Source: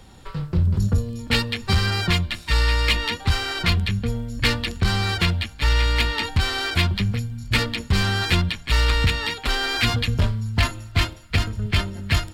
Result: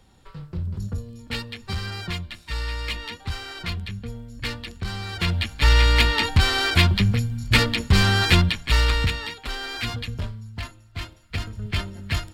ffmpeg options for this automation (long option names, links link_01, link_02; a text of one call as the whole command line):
ffmpeg -i in.wav -af "volume=14dB,afade=type=in:start_time=5.12:duration=0.41:silence=0.237137,afade=type=out:start_time=8.41:duration=0.93:silence=0.281838,afade=type=out:start_time=10:duration=0.82:silence=0.398107,afade=type=in:start_time=10.82:duration=0.92:silence=0.281838" out.wav